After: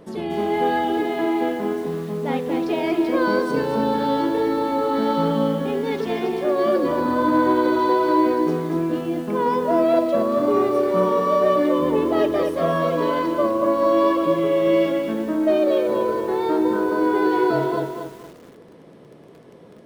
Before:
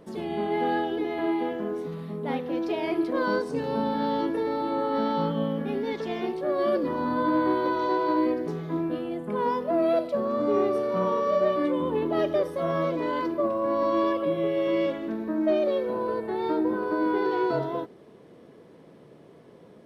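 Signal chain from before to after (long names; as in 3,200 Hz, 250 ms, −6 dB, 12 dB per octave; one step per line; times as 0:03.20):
0:01.00–0:01.59: high-pass filter 110 Hz 12 dB per octave
0:12.31–0:13.11: comb filter 4.3 ms, depth 66%
feedback echo at a low word length 233 ms, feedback 35%, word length 8 bits, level −6 dB
level +5 dB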